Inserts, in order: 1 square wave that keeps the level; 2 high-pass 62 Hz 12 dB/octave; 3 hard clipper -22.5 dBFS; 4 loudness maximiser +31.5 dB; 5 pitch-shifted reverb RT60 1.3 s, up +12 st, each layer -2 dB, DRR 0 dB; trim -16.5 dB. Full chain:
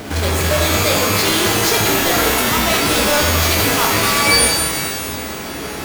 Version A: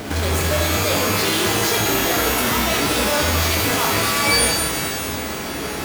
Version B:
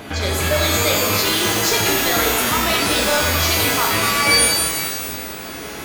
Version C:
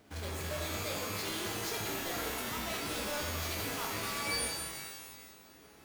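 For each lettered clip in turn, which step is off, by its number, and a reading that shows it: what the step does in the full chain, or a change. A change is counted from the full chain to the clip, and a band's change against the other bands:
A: 3, distortion -9 dB; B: 1, distortion -5 dB; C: 4, loudness change -21.5 LU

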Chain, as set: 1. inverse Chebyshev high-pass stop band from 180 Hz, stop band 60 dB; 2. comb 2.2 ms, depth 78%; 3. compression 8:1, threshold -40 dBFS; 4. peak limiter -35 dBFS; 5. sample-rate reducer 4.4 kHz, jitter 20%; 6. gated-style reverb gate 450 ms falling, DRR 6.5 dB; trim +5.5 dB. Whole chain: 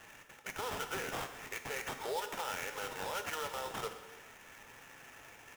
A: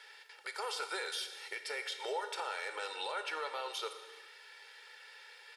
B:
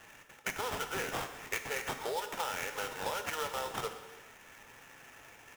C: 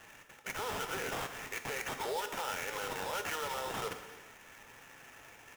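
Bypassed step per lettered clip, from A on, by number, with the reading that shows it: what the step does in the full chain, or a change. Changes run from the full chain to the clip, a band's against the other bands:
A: 5, 250 Hz band -7.5 dB; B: 4, crest factor change +2.5 dB; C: 3, mean gain reduction 13.0 dB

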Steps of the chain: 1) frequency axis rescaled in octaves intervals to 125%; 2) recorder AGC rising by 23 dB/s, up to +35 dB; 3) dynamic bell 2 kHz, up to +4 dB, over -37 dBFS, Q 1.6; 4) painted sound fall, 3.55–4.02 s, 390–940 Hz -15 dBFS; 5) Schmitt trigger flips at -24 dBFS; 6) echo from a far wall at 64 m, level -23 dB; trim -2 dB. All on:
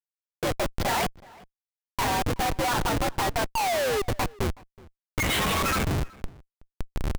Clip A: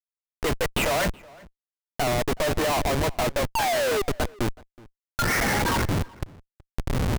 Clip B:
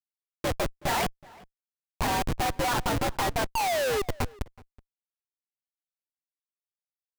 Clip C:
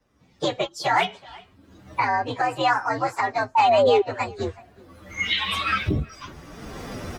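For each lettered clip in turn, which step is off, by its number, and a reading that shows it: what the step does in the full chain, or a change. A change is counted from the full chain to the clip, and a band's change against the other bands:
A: 1, 1 kHz band -2.5 dB; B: 2, crest factor change +2.5 dB; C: 5, crest factor change +7.5 dB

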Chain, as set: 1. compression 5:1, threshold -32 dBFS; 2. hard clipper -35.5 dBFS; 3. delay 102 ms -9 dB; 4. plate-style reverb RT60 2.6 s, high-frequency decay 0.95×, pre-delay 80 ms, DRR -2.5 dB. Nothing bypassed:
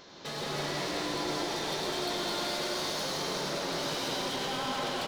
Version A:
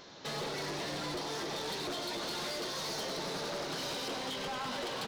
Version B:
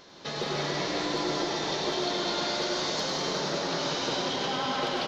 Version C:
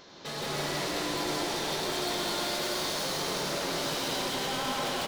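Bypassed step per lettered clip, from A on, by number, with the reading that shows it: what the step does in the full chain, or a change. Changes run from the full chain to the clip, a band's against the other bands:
4, crest factor change -7.5 dB; 2, distortion -9 dB; 1, mean gain reduction 6.5 dB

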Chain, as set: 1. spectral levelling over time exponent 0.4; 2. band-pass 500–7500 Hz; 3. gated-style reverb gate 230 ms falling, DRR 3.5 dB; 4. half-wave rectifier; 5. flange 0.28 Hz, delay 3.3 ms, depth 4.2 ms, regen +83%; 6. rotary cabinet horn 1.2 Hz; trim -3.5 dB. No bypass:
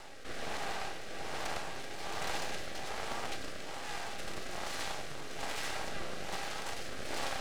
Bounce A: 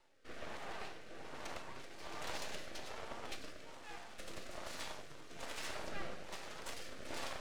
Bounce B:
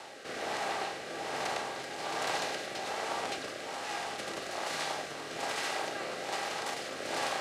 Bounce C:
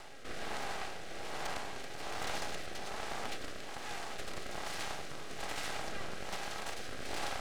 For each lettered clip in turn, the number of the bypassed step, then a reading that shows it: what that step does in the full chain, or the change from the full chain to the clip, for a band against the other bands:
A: 1, 250 Hz band +1.5 dB; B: 4, 125 Hz band -7.5 dB; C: 3, loudness change -1.5 LU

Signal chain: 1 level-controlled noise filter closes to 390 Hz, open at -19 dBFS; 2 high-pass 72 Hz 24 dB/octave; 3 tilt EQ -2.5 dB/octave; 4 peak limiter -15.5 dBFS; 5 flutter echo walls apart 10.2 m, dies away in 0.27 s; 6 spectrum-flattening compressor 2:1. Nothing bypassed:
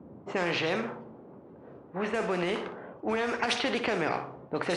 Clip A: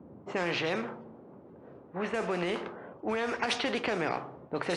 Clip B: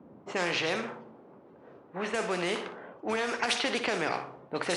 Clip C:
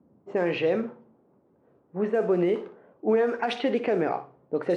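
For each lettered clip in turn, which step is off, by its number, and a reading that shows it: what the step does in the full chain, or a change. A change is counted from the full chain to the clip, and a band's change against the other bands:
5, loudness change -2.0 LU; 3, 8 kHz band +7.0 dB; 6, 4 kHz band -8.0 dB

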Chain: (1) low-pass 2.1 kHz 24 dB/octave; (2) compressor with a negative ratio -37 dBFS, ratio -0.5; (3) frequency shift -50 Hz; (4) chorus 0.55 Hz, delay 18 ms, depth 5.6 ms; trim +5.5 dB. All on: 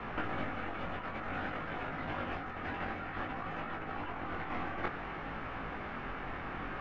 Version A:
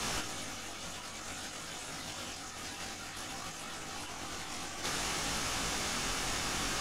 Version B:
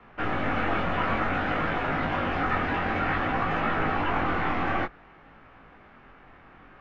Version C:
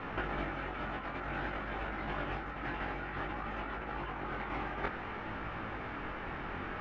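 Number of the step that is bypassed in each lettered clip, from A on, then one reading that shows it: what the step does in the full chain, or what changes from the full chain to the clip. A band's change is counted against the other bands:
1, 4 kHz band +17.5 dB; 2, crest factor change -4.5 dB; 3, crest factor change -3.0 dB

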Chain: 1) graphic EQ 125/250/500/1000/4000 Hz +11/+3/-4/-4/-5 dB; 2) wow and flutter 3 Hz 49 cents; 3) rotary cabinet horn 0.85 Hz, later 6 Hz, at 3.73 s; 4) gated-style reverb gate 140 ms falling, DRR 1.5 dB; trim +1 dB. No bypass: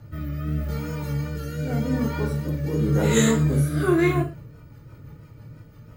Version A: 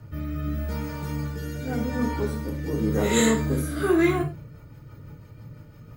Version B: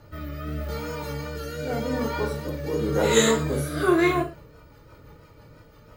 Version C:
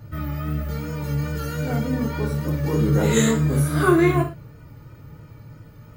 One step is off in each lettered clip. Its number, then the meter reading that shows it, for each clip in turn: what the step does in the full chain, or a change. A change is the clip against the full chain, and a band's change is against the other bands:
2, 125 Hz band -5.5 dB; 1, momentary loudness spread change +2 LU; 3, loudness change +1.5 LU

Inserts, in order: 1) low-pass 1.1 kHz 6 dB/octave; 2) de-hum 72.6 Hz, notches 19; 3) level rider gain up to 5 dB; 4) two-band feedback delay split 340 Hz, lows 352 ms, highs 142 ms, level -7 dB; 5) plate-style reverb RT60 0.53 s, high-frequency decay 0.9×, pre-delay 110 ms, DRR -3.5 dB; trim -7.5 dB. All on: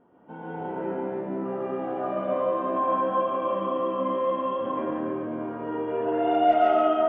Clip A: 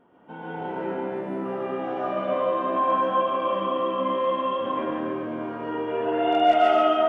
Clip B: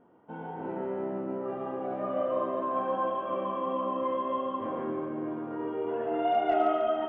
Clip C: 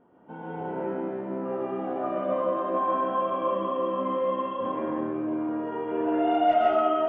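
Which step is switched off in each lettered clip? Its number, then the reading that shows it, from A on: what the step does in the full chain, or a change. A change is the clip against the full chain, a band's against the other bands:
1, 2 kHz band +5.0 dB; 5, echo-to-direct 4.5 dB to -5.5 dB; 4, momentary loudness spread change -1 LU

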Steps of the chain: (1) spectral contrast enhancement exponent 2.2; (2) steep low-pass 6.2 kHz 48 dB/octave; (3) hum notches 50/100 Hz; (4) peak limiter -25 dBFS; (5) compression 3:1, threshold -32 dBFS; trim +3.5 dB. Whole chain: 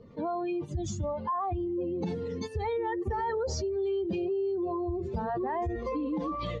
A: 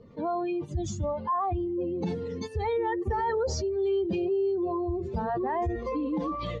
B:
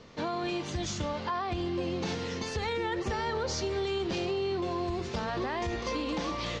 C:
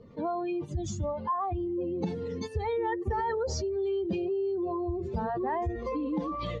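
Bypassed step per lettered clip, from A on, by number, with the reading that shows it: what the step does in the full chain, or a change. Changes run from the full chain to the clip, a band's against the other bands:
5, mean gain reduction 2.0 dB; 1, 4 kHz band +12.0 dB; 4, crest factor change +3.5 dB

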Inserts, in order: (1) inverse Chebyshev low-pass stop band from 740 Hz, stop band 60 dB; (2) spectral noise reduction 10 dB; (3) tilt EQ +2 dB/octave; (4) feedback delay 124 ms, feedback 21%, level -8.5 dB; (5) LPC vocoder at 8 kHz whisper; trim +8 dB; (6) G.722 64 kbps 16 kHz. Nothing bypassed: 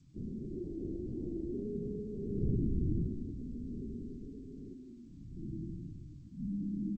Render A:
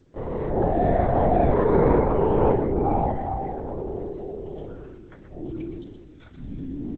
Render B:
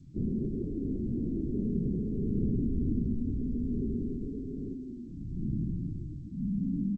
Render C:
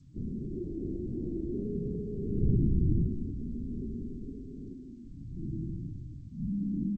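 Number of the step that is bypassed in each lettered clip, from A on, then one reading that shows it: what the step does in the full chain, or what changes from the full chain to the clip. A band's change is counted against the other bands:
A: 1, crest factor change +2.0 dB; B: 2, crest factor change -3.0 dB; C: 3, loudness change +5.0 LU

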